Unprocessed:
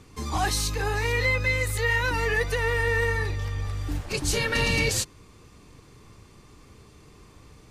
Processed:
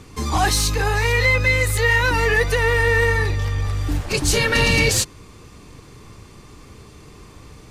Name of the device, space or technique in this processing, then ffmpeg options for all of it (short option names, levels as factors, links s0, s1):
parallel distortion: -filter_complex "[0:a]asettb=1/sr,asplit=3[s0][s1][s2];[s0]atrim=end=0.824[s3];[s1]atrim=start=0.82:end=1.34,asetpts=PTS-STARTPTS,afade=t=in:d=0.004:c=qsin,afade=t=out:st=0.516:d=0.004:c=qsin,equalizer=f=310:w=4.1:g=-13[s4];[s2]atrim=start=1.336[s5];[s3][s4]acrossfade=d=0.004:c1=hsin:c2=qsin[s6];[s6][s5]acrossfade=d=0.004:c1=qsin:c2=hsin,asplit=2[s7][s8];[s8]asoftclip=type=hard:threshold=0.0398,volume=0.266[s9];[s7][s9]amix=inputs=2:normalize=0,volume=2"